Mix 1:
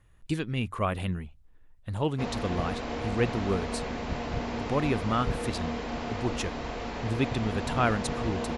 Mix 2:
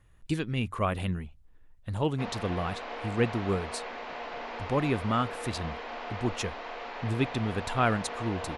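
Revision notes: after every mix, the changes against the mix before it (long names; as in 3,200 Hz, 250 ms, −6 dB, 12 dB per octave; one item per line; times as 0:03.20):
background: add band-pass filter 590–3,500 Hz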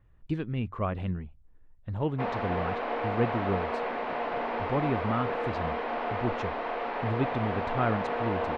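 background +10.0 dB
master: add head-to-tape spacing loss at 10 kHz 33 dB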